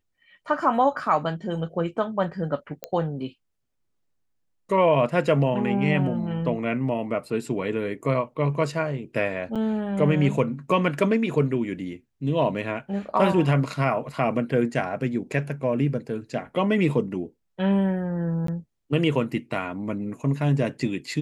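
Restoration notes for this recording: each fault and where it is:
2.84 s: pop -14 dBFS
9.55–9.56 s: dropout 6.7 ms
18.47–18.48 s: dropout 13 ms

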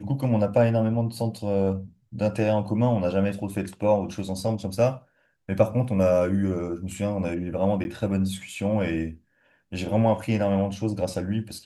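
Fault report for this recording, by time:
7.84–7.85 s: dropout 10 ms

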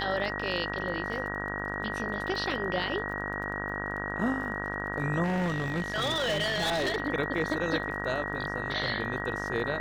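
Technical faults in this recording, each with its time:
buzz 50 Hz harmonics 35 -36 dBFS
crackle 29 per s -40 dBFS
whine 1.9 kHz -35 dBFS
5.23–6.96 s: clipped -25 dBFS

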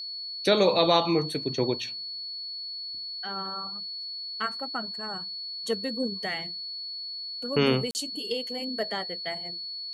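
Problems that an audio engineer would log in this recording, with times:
whine 4.4 kHz -34 dBFS
7.91–7.95 s: dropout 39 ms

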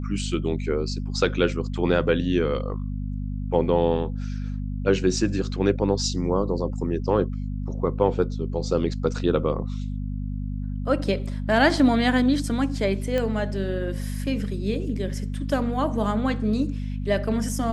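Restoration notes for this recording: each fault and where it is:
hum 50 Hz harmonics 5 -29 dBFS
13.18 s: pop -14 dBFS

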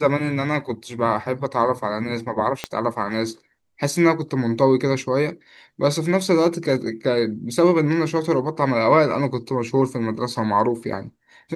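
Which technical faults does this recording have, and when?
2.64 s: pop -9 dBFS

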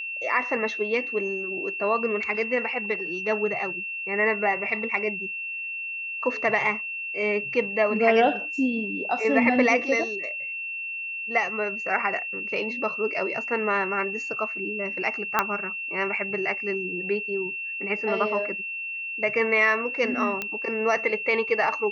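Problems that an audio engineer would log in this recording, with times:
whine 2.7 kHz -30 dBFS
15.39 s: pop -7 dBFS
20.42 s: pop -14 dBFS

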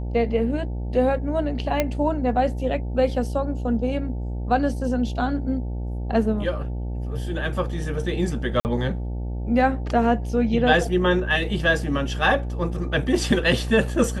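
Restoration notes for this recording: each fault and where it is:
buzz 60 Hz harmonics 15 -28 dBFS
1.80 s: pop -7 dBFS
8.60–8.65 s: dropout 49 ms

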